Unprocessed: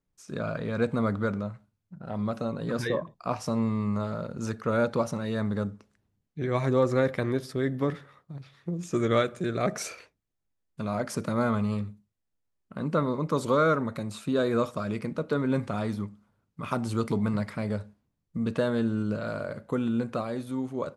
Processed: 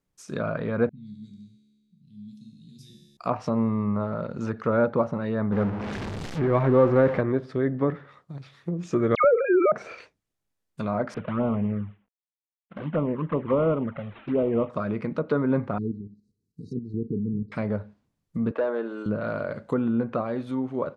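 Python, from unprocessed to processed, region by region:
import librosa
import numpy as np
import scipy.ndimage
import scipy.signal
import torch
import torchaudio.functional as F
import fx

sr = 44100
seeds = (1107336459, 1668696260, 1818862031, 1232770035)

y = fx.chain(x, sr, fx.ellip_bandstop(low_hz=220.0, high_hz=3500.0, order=3, stop_db=60),
    fx.comb_fb(f0_hz=71.0, decay_s=1.9, harmonics='all', damping=0.0, mix_pct=90), at=(0.89, 3.17))
y = fx.chain(y, sr, fx.zero_step(step_db=-28.0),
    fx.high_shelf(hz=6000.0, db=-6.0), at=(5.52, 7.21))
y = fx.chain(y, sr, fx.sine_speech(),
    fx.dispersion(late='lows', ms=96.0, hz=1400.0),
    fx.env_flatten(amount_pct=70), at=(9.15, 9.72))
y = fx.chain(y, sr, fx.cvsd(bps=16000),
    fx.peak_eq(hz=2500.0, db=-2.5, octaves=0.29),
    fx.env_flanger(rest_ms=7.3, full_db=-22.5), at=(11.14, 14.7))
y = fx.chain(y, sr, fx.env_lowpass_down(base_hz=470.0, full_db=-24.0),
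    fx.level_steps(step_db=10),
    fx.brickwall_bandstop(low_hz=480.0, high_hz=3800.0), at=(15.78, 17.52))
y = fx.chain(y, sr, fx.highpass(hz=340.0, slope=24),
    fx.high_shelf(hz=3300.0, db=-7.5),
    fx.clip_hard(threshold_db=-23.0), at=(18.51, 19.06))
y = fx.env_lowpass_down(y, sr, base_hz=1500.0, full_db=-26.0)
y = fx.low_shelf(y, sr, hz=100.0, db=-6.0)
y = y * librosa.db_to_amplitude(4.0)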